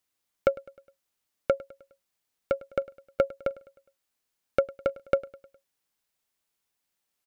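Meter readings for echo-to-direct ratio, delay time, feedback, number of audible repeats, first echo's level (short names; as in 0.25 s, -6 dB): -19.5 dB, 0.103 s, 50%, 3, -20.5 dB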